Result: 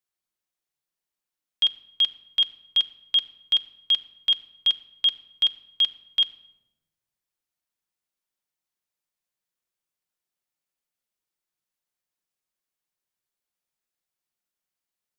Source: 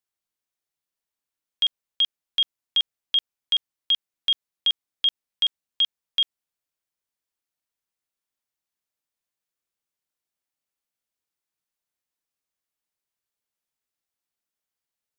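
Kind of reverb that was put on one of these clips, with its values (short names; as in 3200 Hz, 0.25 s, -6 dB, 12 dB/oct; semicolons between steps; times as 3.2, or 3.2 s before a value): shoebox room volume 4000 m³, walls furnished, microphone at 0.95 m; gain -1 dB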